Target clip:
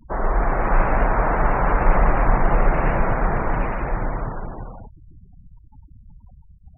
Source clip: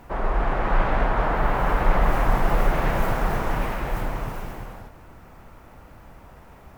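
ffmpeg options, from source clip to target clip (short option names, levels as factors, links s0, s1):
-filter_complex "[0:a]acrossover=split=2900[s0][s1];[s1]acompressor=threshold=0.00398:ratio=4:attack=1:release=60[s2];[s0][s2]amix=inputs=2:normalize=0,afftfilt=real='re*gte(hypot(re,im),0.02)':imag='im*gte(hypot(re,im),0.02)':win_size=1024:overlap=0.75,volume=1.41"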